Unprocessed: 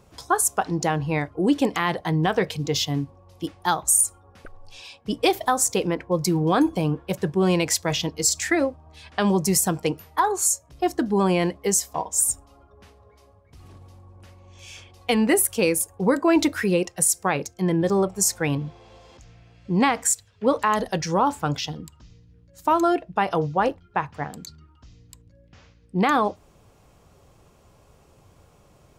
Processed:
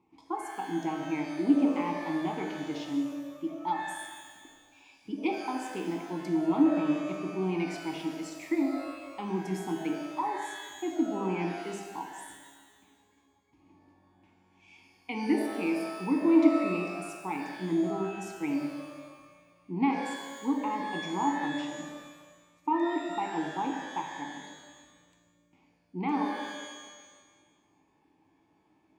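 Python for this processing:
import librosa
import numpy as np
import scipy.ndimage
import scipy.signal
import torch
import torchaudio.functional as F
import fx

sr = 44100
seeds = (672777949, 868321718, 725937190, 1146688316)

y = fx.vowel_filter(x, sr, vowel='u')
y = fx.high_shelf(y, sr, hz=12000.0, db=9.5)
y = fx.rev_shimmer(y, sr, seeds[0], rt60_s=1.4, semitones=12, shimmer_db=-8, drr_db=1.5)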